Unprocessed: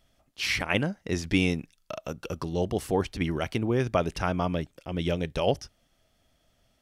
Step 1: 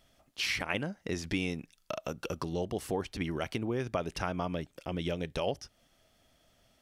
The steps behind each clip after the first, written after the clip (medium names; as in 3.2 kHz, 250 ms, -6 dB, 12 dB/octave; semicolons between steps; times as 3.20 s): compression 2.5:1, threshold -35 dBFS, peak gain reduction 11 dB; bass shelf 130 Hz -5.5 dB; trim +2.5 dB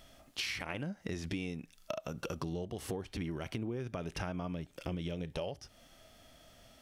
harmonic-percussive split percussive -10 dB; compression 10:1, threshold -46 dBFS, peak gain reduction 16 dB; trim +11 dB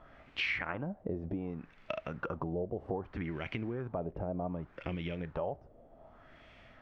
added noise pink -63 dBFS; LFO low-pass sine 0.65 Hz 560–2400 Hz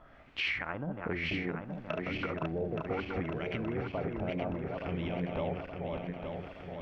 backward echo that repeats 436 ms, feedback 74%, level -3.5 dB